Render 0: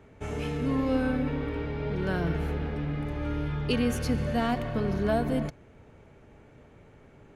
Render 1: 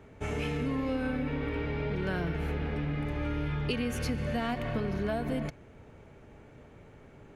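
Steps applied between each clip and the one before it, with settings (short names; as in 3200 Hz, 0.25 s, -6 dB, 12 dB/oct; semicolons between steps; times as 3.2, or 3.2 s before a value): dynamic EQ 2300 Hz, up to +5 dB, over -51 dBFS, Q 1.6; compressor, threshold -29 dBFS, peak gain reduction 8 dB; gain +1 dB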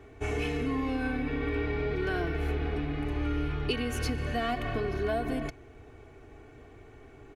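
comb 2.7 ms, depth 75%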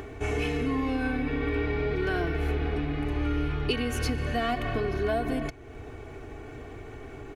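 upward compressor, threshold -35 dBFS; gain +2.5 dB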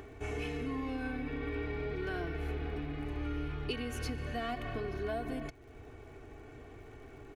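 crackle 91/s -49 dBFS; gain -9 dB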